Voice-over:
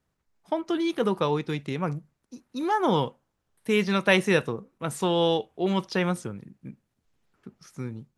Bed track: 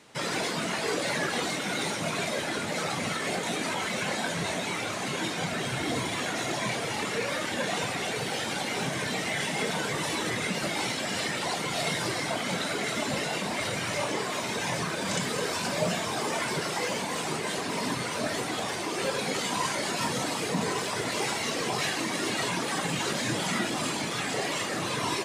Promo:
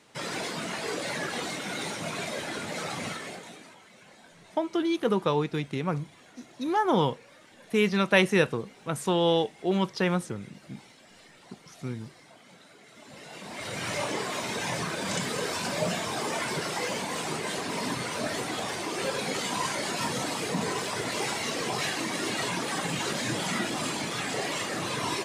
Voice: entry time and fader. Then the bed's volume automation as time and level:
4.05 s, -0.5 dB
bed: 3.08 s -3.5 dB
3.82 s -23.5 dB
12.88 s -23.5 dB
13.87 s -1 dB

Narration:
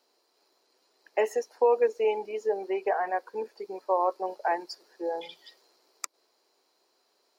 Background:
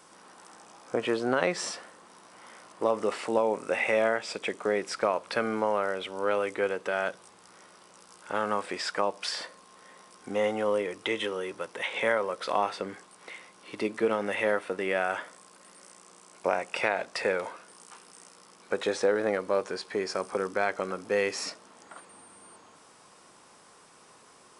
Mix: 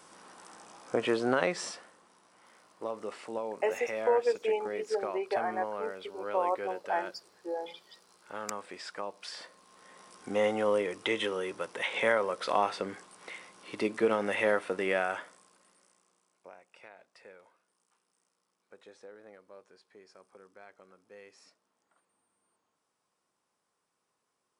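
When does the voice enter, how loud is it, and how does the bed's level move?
2.45 s, -4.0 dB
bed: 1.29 s -0.5 dB
2.18 s -10.5 dB
9.25 s -10.5 dB
10.10 s -0.5 dB
14.92 s -0.5 dB
16.57 s -25.5 dB

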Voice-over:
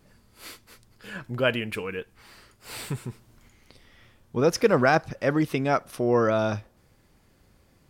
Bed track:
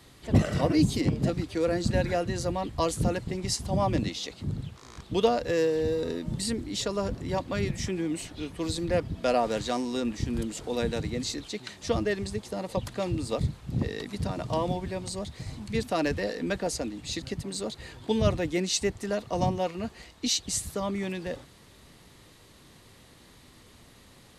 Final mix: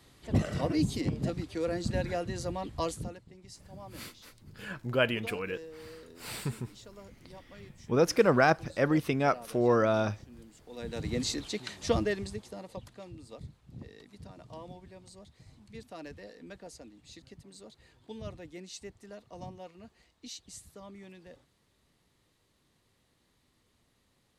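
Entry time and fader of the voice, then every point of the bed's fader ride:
3.55 s, -3.0 dB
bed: 2.89 s -5.5 dB
3.23 s -21 dB
10.59 s -21 dB
11.13 s 0 dB
11.93 s 0 dB
13.08 s -17.5 dB

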